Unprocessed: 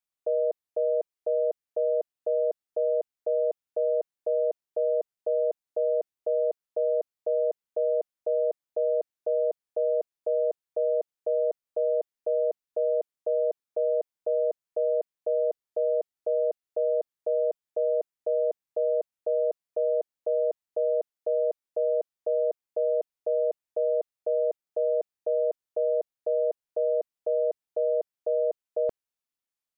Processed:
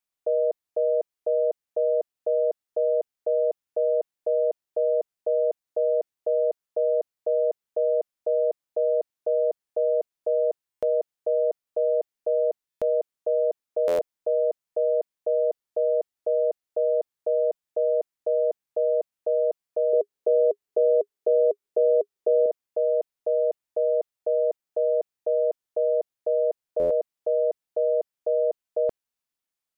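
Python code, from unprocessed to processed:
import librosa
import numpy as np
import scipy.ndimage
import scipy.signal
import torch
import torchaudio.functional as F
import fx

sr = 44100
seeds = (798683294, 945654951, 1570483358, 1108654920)

y = fx.peak_eq(x, sr, hz=410.0, db=14.0, octaves=0.29, at=(19.93, 22.46))
y = fx.buffer_glitch(y, sr, at_s=(10.71, 12.7, 13.87, 26.79), block=512, repeats=9)
y = F.gain(torch.from_numpy(y), 2.5).numpy()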